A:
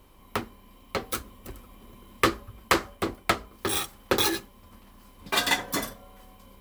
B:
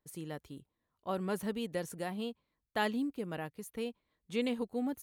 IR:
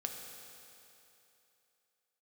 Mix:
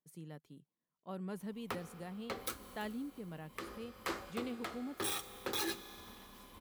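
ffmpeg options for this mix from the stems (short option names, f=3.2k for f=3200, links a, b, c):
-filter_complex "[0:a]lowshelf=f=130:g=-8.5,alimiter=limit=-15dB:level=0:latency=1:release=110,adelay=1350,volume=-3.5dB,asplit=2[a][b];[b]volume=-12dB[c];[1:a]lowshelf=f=110:t=q:w=3:g=-12.5,volume=-11dB,asplit=2[d][e];[e]apad=whole_len=350794[f];[a][f]sidechaincompress=threshold=-59dB:ratio=8:attack=16:release=124[g];[2:a]atrim=start_sample=2205[h];[c][h]afir=irnorm=-1:irlink=0[i];[g][d][i]amix=inputs=3:normalize=0,alimiter=level_in=1.5dB:limit=-24dB:level=0:latency=1:release=231,volume=-1.5dB"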